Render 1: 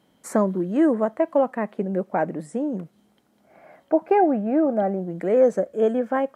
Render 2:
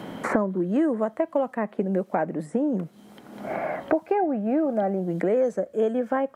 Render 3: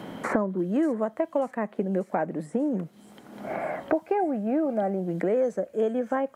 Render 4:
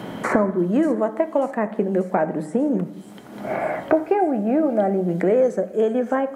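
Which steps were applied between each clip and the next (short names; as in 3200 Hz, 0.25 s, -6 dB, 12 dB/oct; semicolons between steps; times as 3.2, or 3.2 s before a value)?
three-band squash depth 100%; gain -3.5 dB
thin delay 0.59 s, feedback 69%, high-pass 4900 Hz, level -8.5 dB; gain -2 dB
reverb RT60 0.95 s, pre-delay 4 ms, DRR 10 dB; gain +6 dB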